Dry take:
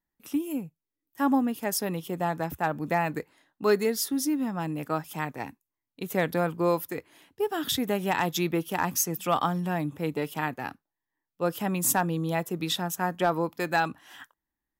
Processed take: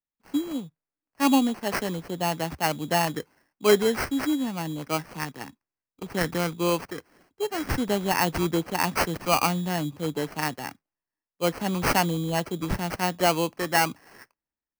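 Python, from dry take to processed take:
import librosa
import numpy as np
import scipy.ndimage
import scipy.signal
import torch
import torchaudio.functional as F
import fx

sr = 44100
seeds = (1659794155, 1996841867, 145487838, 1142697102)

y = fx.graphic_eq_15(x, sr, hz=(100, 630, 4000, 10000), db=(-4, -7, 8, -9), at=(4.97, 7.54))
y = fx.sample_hold(y, sr, seeds[0], rate_hz=3600.0, jitter_pct=0)
y = fx.band_widen(y, sr, depth_pct=40)
y = y * 10.0 ** (2.0 / 20.0)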